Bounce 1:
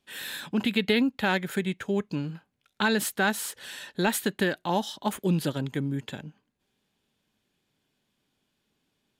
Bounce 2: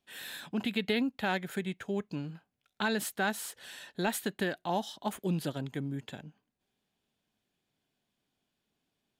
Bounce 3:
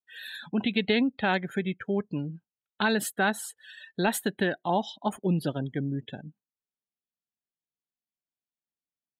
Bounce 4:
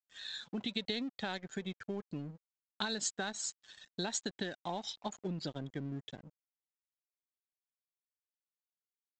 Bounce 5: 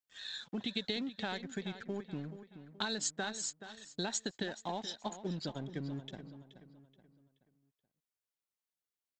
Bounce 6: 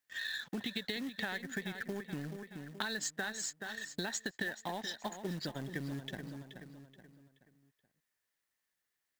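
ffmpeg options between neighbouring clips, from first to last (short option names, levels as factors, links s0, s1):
-af "equalizer=f=700:t=o:w=0.2:g=7,volume=0.473"
-af "afftdn=nr=29:nf=-44,volume=1.88"
-af "acompressor=threshold=0.0447:ratio=6,aexciter=amount=5.8:drive=5.7:freq=3900,aresample=16000,aeval=exprs='sgn(val(0))*max(abs(val(0))-0.00473,0)':c=same,aresample=44100,volume=0.447"
-filter_complex "[0:a]asplit=2[s0][s1];[s1]adelay=427,lowpass=f=4500:p=1,volume=0.251,asplit=2[s2][s3];[s3]adelay=427,lowpass=f=4500:p=1,volume=0.4,asplit=2[s4][s5];[s5]adelay=427,lowpass=f=4500:p=1,volume=0.4,asplit=2[s6][s7];[s7]adelay=427,lowpass=f=4500:p=1,volume=0.4[s8];[s0][s2][s4][s6][s8]amix=inputs=5:normalize=0"
-af "equalizer=f=1800:w=4.4:g=13.5,acompressor=threshold=0.00562:ratio=2.5,acrusher=bits=4:mode=log:mix=0:aa=0.000001,volume=2"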